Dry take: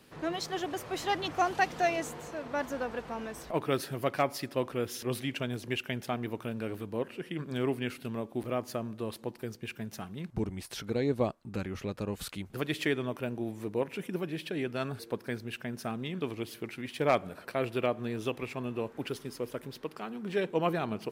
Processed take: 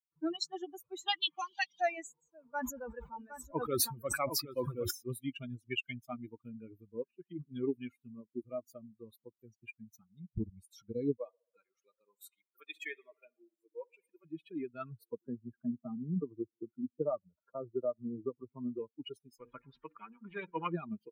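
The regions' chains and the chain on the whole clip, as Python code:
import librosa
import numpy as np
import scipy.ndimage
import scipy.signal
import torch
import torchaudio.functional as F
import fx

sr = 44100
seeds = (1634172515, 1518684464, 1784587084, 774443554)

y = fx.chain(x, sr, fx.cabinet(low_hz=180.0, low_slope=24, high_hz=6900.0, hz=(290.0, 420.0, 730.0, 1400.0, 3200.0, 4700.0), db=(-8, -9, -8, -8, 10, 5)),
    fx.band_squash(depth_pct=100), at=(1.08, 1.81))
y = fx.chain(y, sr, fx.echo_single(ms=762, db=-5.0),
    fx.sustainer(db_per_s=37.0), at=(2.36, 4.91))
y = fx.chain(y, sr, fx.highpass(hz=480.0, slope=12),
    fx.echo_tape(ms=64, feedback_pct=86, wet_db=-10, lp_hz=4200.0, drive_db=19.0, wow_cents=38), at=(11.17, 14.25))
y = fx.chain(y, sr, fx.lowpass(hz=1300.0, slope=24),
    fx.band_squash(depth_pct=70), at=(15.21, 18.79))
y = fx.chain(y, sr, fx.lowpass(hz=1700.0, slope=12),
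    fx.hum_notches(base_hz=60, count=9),
    fx.spectral_comp(ratio=2.0), at=(19.4, 20.73))
y = fx.bin_expand(y, sr, power=3.0)
y = fx.high_shelf(y, sr, hz=7600.0, db=9.5)
y = fx.rider(y, sr, range_db=3, speed_s=0.5)
y = y * librosa.db_to_amplitude(2.5)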